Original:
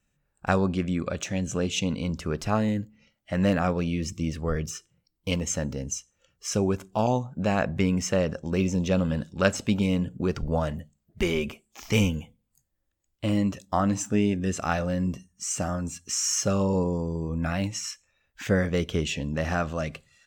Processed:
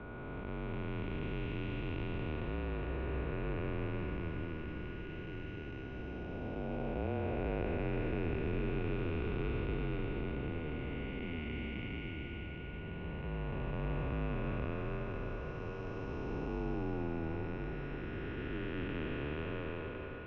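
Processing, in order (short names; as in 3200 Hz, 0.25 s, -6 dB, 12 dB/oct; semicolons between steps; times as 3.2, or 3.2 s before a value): time blur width 1.25 s; bell 1600 Hz -4.5 dB 0.32 oct; whine 1600 Hz -50 dBFS; on a send: diffused feedback echo 0.522 s, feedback 79%, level -14 dB; on the sum: mistuned SSB -150 Hz 210–3300 Hz; gain -3 dB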